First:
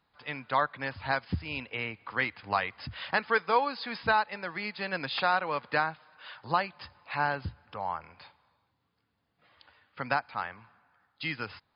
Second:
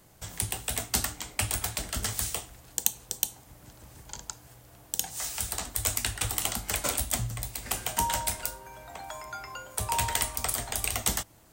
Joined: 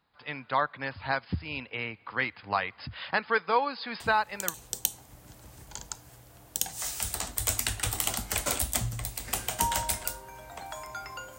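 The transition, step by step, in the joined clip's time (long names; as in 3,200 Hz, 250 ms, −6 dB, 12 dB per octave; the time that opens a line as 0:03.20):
first
0:04.00: mix in second from 0:02.38 0.54 s −7 dB
0:04.54: continue with second from 0:02.92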